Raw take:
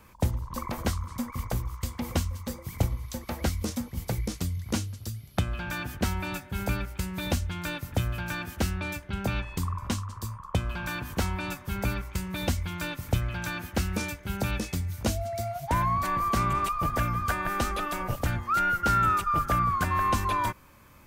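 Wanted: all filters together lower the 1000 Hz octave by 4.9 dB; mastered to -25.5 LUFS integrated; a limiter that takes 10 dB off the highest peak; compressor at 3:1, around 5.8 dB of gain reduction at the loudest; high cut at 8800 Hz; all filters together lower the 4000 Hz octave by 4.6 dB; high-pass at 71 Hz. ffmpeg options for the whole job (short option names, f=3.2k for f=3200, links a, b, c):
-af "highpass=71,lowpass=8.8k,equalizer=f=1k:t=o:g=-6,equalizer=f=4k:t=o:g=-5.5,acompressor=threshold=-30dB:ratio=3,volume=12dB,alimiter=limit=-15.5dB:level=0:latency=1"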